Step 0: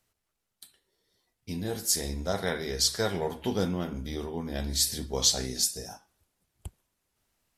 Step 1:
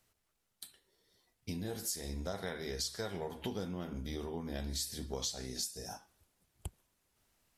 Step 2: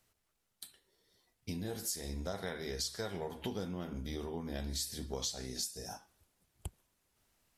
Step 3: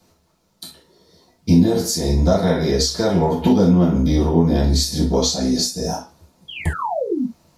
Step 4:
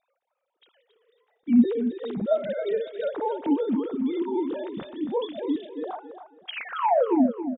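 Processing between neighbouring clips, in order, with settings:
compressor 5:1, threshold -38 dBFS, peak gain reduction 17.5 dB; gain +1 dB
nothing audible
painted sound fall, 6.48–7.26, 210–3400 Hz -45 dBFS; reverb, pre-delay 3 ms, DRR -10.5 dB; gain +5 dB
sine-wave speech; on a send: feedback echo 0.274 s, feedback 26%, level -10 dB; on the sum: gain -8.5 dB

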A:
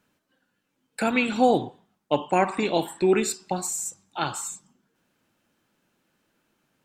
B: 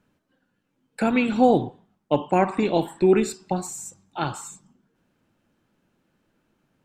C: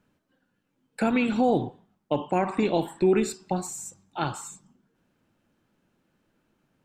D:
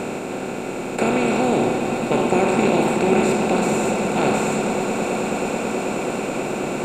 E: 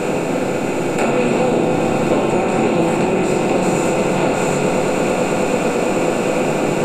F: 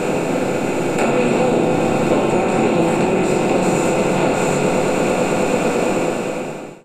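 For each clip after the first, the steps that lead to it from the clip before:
tilt -2 dB/oct
limiter -11.5 dBFS, peak gain reduction 6 dB; gain -1.5 dB
per-bin compression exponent 0.2; swelling echo 0.108 s, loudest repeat 8, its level -13.5 dB; gain -2.5 dB
compressor, threshold -21 dBFS, peak gain reduction 9.5 dB; shoebox room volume 40 m³, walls mixed, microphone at 0.6 m; gain +4.5 dB
ending faded out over 0.97 s

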